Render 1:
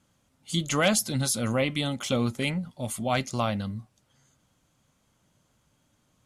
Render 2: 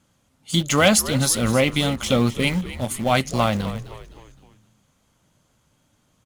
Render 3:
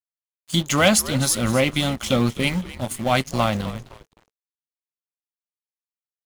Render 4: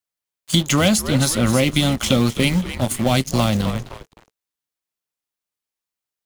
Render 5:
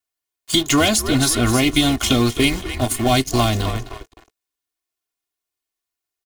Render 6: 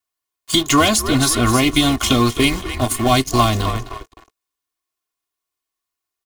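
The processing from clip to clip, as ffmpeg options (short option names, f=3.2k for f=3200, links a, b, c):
-filter_complex "[0:a]asplit=2[a][b];[b]aeval=exprs='val(0)*gte(abs(val(0)),0.0398)':c=same,volume=-7dB[c];[a][c]amix=inputs=2:normalize=0,asplit=5[d][e][f][g][h];[e]adelay=258,afreqshift=-78,volume=-14dB[i];[f]adelay=516,afreqshift=-156,volume=-21.1dB[j];[g]adelay=774,afreqshift=-234,volume=-28.3dB[k];[h]adelay=1032,afreqshift=-312,volume=-35.4dB[l];[d][i][j][k][l]amix=inputs=5:normalize=0,volume=4dB"
-af "aeval=exprs='sgn(val(0))*max(abs(val(0))-0.0119,0)':c=same,bandreject=f=450:w=12"
-filter_complex "[0:a]acrossover=split=430|3400[a][b][c];[a]acompressor=threshold=-23dB:ratio=4[d];[b]acompressor=threshold=-32dB:ratio=4[e];[c]acompressor=threshold=-30dB:ratio=4[f];[d][e][f]amix=inputs=3:normalize=0,volume=8dB"
-af "aecho=1:1:2.8:0.85"
-af "equalizer=f=1.1k:w=6.2:g=8.5,volume=1dB"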